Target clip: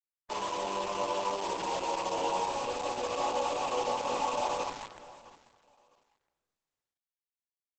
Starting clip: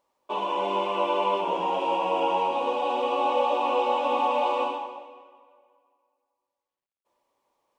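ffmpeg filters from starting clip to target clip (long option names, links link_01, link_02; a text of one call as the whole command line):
ffmpeg -i in.wav -af "aresample=16000,acrusher=bits=6:dc=4:mix=0:aa=0.000001,aresample=44100,aecho=1:1:652|1304:0.0944|0.0227,volume=-6.5dB" -ar 48000 -c:a libopus -b:a 10k out.opus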